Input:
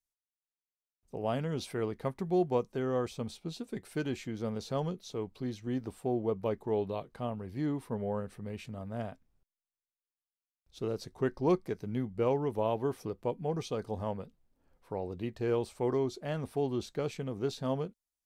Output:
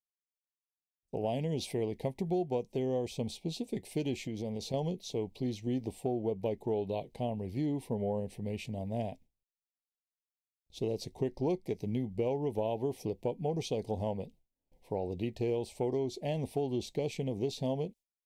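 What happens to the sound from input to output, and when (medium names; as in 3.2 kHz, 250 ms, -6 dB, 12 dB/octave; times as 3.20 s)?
4.27–4.74 s: compression 5:1, threshold -37 dBFS
whole clip: gate with hold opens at -57 dBFS; Chebyshev band-stop 800–2300 Hz, order 2; compression 4:1, threshold -34 dBFS; trim +4.5 dB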